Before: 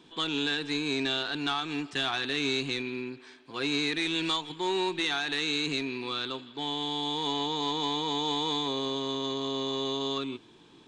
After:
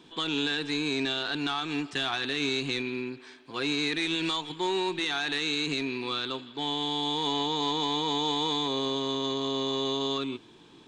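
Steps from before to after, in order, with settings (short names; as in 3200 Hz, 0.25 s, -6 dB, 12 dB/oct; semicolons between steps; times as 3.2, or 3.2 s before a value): limiter -21.5 dBFS, peak gain reduction 4.5 dB; gain +2 dB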